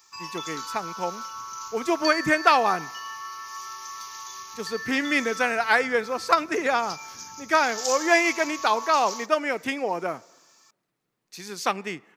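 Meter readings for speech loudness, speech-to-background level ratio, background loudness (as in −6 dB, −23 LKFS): −24.0 LKFS, 11.0 dB, −35.0 LKFS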